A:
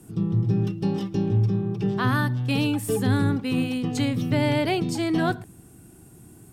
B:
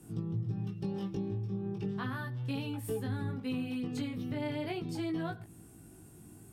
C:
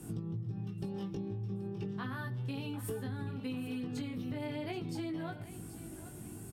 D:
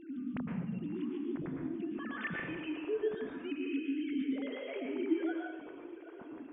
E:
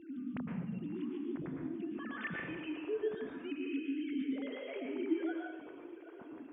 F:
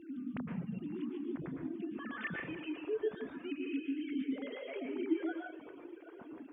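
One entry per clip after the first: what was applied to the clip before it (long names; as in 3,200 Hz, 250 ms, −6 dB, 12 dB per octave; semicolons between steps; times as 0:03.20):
dynamic equaliser 7,000 Hz, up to −7 dB, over −53 dBFS, Q 1.2; downward compressor, threshold −29 dBFS, peak gain reduction 11.5 dB; chorus effect 0.37 Hz, delay 18 ms, depth 2.7 ms; level −2 dB
downward compressor 6 to 1, threshold −43 dBFS, peak gain reduction 12 dB; repeating echo 780 ms, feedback 36%, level −14.5 dB; level +6.5 dB
three sine waves on the formant tracks; dynamic equaliser 830 Hz, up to −5 dB, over −52 dBFS, Q 0.78; dense smooth reverb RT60 0.83 s, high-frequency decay 0.9×, pre-delay 100 ms, DRR −0.5 dB
high-pass filter 49 Hz; level −2 dB
reverb reduction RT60 0.51 s; level +1 dB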